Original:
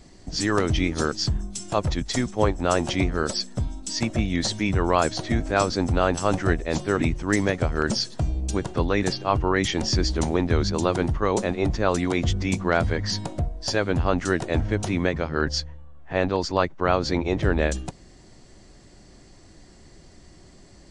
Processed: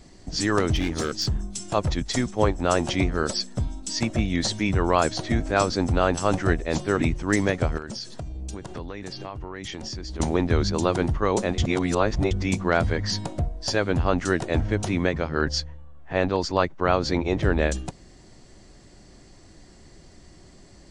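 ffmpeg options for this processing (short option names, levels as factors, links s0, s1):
-filter_complex "[0:a]asettb=1/sr,asplit=3[s0][s1][s2];[s0]atrim=end=0.754[s3];[s1]atrim=start=0.75:end=1.4,asetpts=PTS-STARTPTS,afade=t=in:d=0.004:c=qsin,afade=t=out:st=0.646:d=0.004:c=qsin,asoftclip=type=hard:threshold=0.106[s4];[s2]atrim=start=1.396[s5];[s3][s4]acrossfade=d=0.004:c1=hsin:c2=qsin[s6];[s6][s5]acrossfade=d=0.004:c1=qsin:c2=hsin,asettb=1/sr,asplit=3[s7][s8][s9];[s7]atrim=end=7.774[s10];[s8]atrim=start=7.77:end=10.2,asetpts=PTS-STARTPTS,afade=t=in:d=0.004:c=qsin,afade=t=out:st=2.426:d=0.004:c=qsin,acompressor=threshold=0.0316:ratio=10:attack=3.2:release=140:knee=1:detection=peak[s11];[s9]atrim=start=10.196[s12];[s10][s11]acrossfade=d=0.004:c1=hsin:c2=qsin[s13];[s13][s12]acrossfade=d=0.004:c1=qsin:c2=hsin,asplit=3[s14][s15][s16];[s14]atrim=end=11.582[s17];[s15]atrim=start=11.578:end=12.312,asetpts=PTS-STARTPTS,areverse[s18];[s16]atrim=start=12.308[s19];[s17][s18]acrossfade=d=0.004:c1=hsin:c2=hsin[s20];[s20][s19]acrossfade=d=0.004:c1=hsin:c2=hsin"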